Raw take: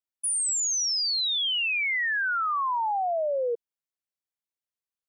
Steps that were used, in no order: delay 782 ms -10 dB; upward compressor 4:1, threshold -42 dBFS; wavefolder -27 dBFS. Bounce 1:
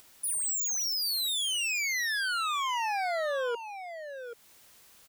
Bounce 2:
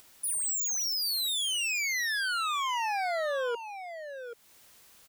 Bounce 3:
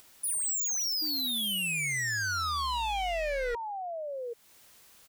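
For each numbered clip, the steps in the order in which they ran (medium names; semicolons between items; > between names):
wavefolder > upward compressor > delay; upward compressor > wavefolder > delay; upward compressor > delay > wavefolder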